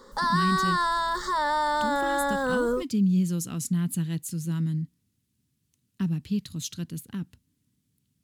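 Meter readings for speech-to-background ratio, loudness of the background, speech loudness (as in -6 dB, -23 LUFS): -4.0 dB, -26.0 LUFS, -30.0 LUFS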